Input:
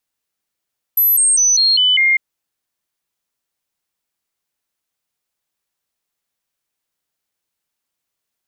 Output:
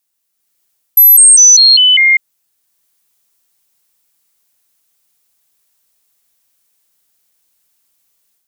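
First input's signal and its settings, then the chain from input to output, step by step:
stepped sweep 12,000 Hz down, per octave 2, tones 6, 0.20 s, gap 0.00 s −10 dBFS
high-shelf EQ 5,300 Hz +11.5 dB
brickwall limiter −4 dBFS
automatic gain control gain up to 8.5 dB

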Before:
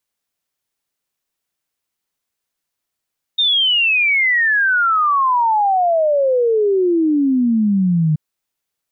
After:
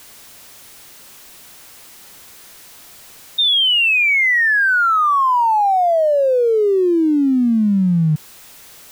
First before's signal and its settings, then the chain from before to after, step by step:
exponential sine sweep 3,700 Hz → 150 Hz 4.78 s −12 dBFS
converter with a step at zero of −35.5 dBFS

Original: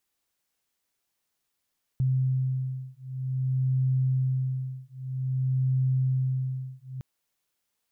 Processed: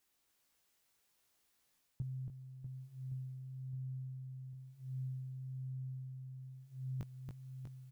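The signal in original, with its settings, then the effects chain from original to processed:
two tones that beat 130 Hz, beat 0.52 Hz, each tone −27 dBFS 5.01 s
reversed playback
downward compressor 6 to 1, threshold −36 dBFS
reversed playback
double-tracking delay 19 ms −5.5 dB
reverse bouncing-ball delay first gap 280 ms, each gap 1.3×, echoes 5

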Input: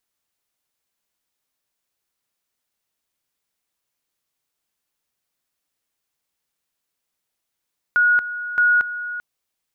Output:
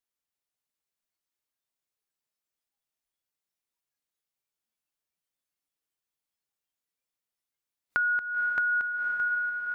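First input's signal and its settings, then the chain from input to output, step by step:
tone at two levels in turn 1,450 Hz −12.5 dBFS, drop 13 dB, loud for 0.23 s, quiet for 0.39 s, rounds 2
on a send: feedback delay with all-pass diffusion 524 ms, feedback 45%, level −6 dB
on the sum: downward compressor 5 to 1, threshold −26 dBFS
noise reduction from a noise print of the clip's start 12 dB

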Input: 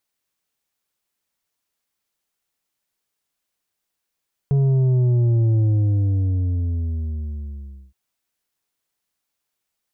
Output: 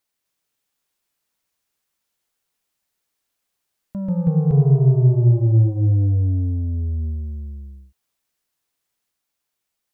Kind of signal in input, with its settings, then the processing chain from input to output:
bass drop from 140 Hz, over 3.42 s, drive 6.5 dB, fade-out 2.34 s, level −15 dB
delay with pitch and tempo change per echo 253 ms, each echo +2 semitones, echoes 3

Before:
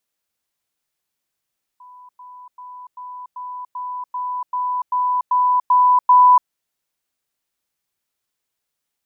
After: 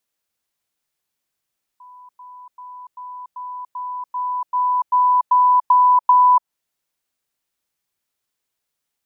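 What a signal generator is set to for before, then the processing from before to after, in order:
level staircase 995 Hz −40 dBFS, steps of 3 dB, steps 12, 0.29 s 0.10 s
dynamic equaliser 920 Hz, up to +6 dB, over −26 dBFS
downward compressor 4 to 1, threshold −12 dBFS

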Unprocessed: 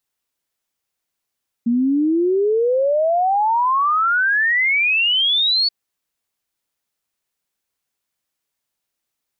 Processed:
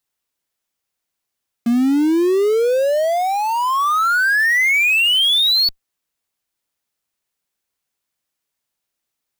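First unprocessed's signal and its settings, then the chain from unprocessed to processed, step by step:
exponential sine sweep 230 Hz → 4,500 Hz 4.03 s −14 dBFS
dynamic equaliser 850 Hz, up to −6 dB, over −31 dBFS, Q 1.9
in parallel at −6 dB: comparator with hysteresis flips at −32 dBFS

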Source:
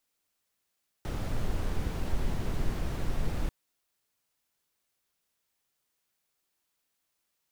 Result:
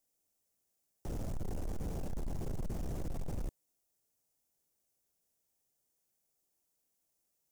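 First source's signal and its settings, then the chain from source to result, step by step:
noise brown, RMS −28.5 dBFS 2.44 s
flat-topped bell 2,100 Hz −10.5 dB 2.5 octaves
soft clipping −33 dBFS

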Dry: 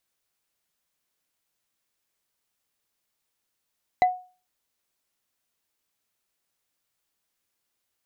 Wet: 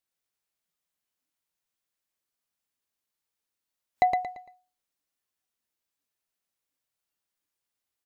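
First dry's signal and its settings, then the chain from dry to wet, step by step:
struck wood bar, lowest mode 732 Hz, decay 0.36 s, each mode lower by 10.5 dB, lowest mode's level −12.5 dB
on a send: repeating echo 114 ms, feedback 35%, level −4 dB
on the sum: noise reduction from a noise print of the clip's start 9 dB

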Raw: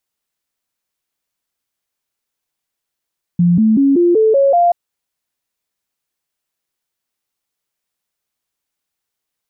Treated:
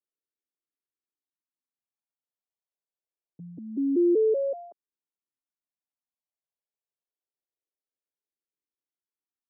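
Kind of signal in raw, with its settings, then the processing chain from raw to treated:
stepped sweep 174 Hz up, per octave 3, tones 7, 0.19 s, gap 0.00 s −8 dBFS
four-pole ladder band-pass 420 Hz, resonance 25%
frequency shifter mixed with the dry sound −0.25 Hz

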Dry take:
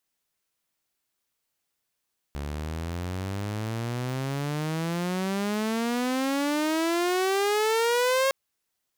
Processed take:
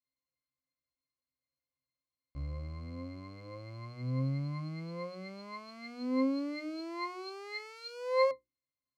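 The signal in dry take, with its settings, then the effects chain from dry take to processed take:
pitch glide with a swell saw, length 5.96 s, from 70.1 Hz, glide +35.5 semitones, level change +10.5 dB, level −18 dB
high-shelf EQ 2,900 Hz +10 dB
mains-hum notches 60/120/180/240/300/360 Hz
resonances in every octave C, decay 0.14 s

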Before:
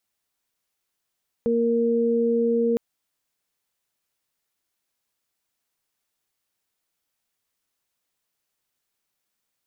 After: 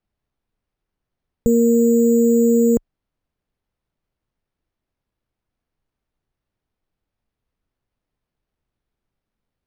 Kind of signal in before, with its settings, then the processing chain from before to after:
steady harmonic partials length 1.31 s, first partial 233 Hz, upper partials 3 dB, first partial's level −23 dB
spectral tilt −4.5 dB per octave
decimation without filtering 6×

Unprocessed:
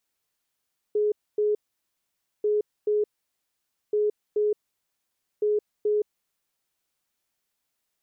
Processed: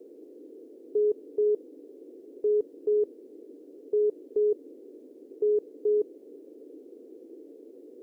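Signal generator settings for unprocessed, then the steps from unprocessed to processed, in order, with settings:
beeps in groups sine 420 Hz, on 0.17 s, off 0.26 s, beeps 2, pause 0.89 s, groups 4, −20 dBFS
noise in a band 270–480 Hz −48 dBFS

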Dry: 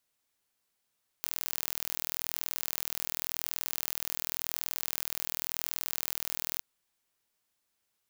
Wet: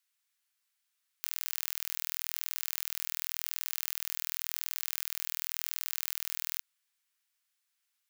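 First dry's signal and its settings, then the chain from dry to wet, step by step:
impulse train 40.9 per second, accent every 0, −6 dBFS 5.37 s
Chebyshev high-pass filter 1,600 Hz, order 2

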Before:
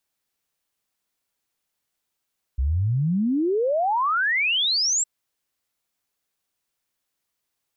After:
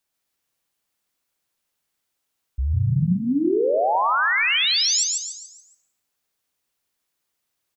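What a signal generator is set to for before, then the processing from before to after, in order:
exponential sine sweep 61 Hz → 7,800 Hz 2.46 s −19 dBFS
on a send: echo with shifted repeats 142 ms, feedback 41%, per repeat +53 Hz, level −3 dB
on the sum: dense smooth reverb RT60 0.81 s, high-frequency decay 0.7×, pre-delay 100 ms, DRR 14 dB

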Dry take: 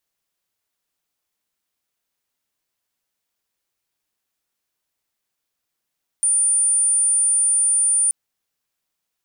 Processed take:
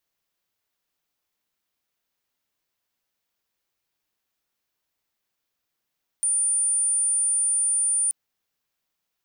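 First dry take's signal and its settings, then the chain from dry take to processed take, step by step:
tone sine 9,260 Hz −14.5 dBFS 1.88 s
parametric band 9,200 Hz −5 dB 0.89 octaves

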